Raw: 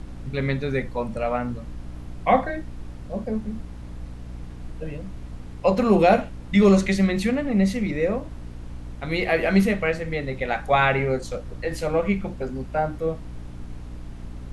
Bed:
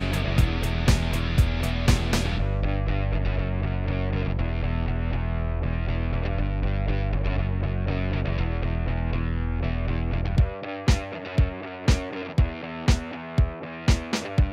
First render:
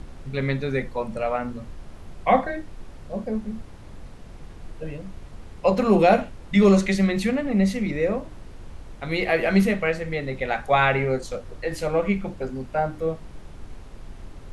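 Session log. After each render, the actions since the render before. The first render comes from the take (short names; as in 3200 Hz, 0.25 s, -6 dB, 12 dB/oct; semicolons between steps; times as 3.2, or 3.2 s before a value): notches 60/120/180/240/300 Hz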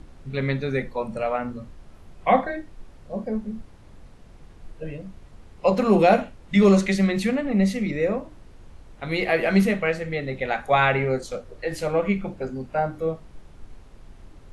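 noise print and reduce 6 dB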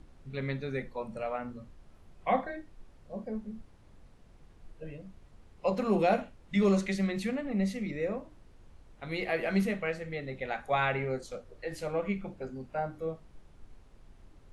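gain -9.5 dB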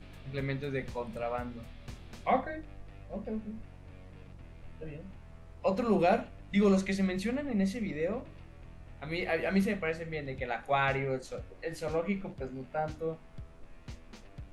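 add bed -25.5 dB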